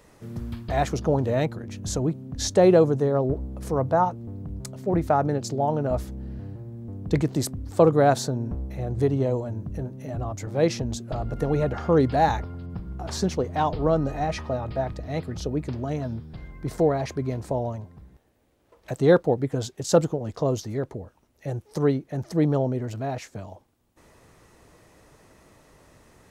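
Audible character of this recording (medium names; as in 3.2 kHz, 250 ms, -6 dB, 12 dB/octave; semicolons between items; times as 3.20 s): noise floor -62 dBFS; spectral tilt -7.0 dB/octave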